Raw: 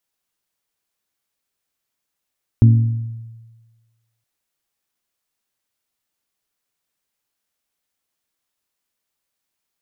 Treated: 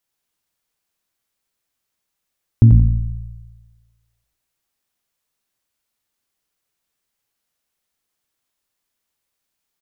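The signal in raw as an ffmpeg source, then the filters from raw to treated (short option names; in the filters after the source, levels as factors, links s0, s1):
-f lavfi -i "aevalsrc='0.562*pow(10,-3*t/1.36)*sin(2*PI*114*t)+0.211*pow(10,-3*t/0.837)*sin(2*PI*228*t)+0.0794*pow(10,-3*t/0.737)*sin(2*PI*273.6*t)+0.0299*pow(10,-3*t/0.63)*sin(2*PI*342*t)':d=1.62:s=44100"
-filter_complex "[0:a]lowshelf=f=130:g=3.5,asplit=2[s0][s1];[s1]asplit=5[s2][s3][s4][s5][s6];[s2]adelay=88,afreqshift=-57,volume=0.596[s7];[s3]adelay=176,afreqshift=-114,volume=0.226[s8];[s4]adelay=264,afreqshift=-171,volume=0.0861[s9];[s5]adelay=352,afreqshift=-228,volume=0.0327[s10];[s6]adelay=440,afreqshift=-285,volume=0.0124[s11];[s7][s8][s9][s10][s11]amix=inputs=5:normalize=0[s12];[s0][s12]amix=inputs=2:normalize=0"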